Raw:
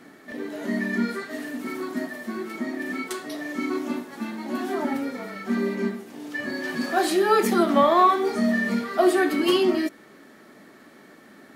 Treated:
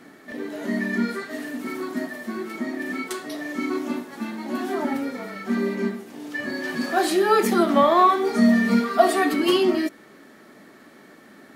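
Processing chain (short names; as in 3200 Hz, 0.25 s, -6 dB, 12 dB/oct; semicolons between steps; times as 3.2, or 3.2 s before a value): 8.34–9.34 comb 4.3 ms, depth 87%; gain +1 dB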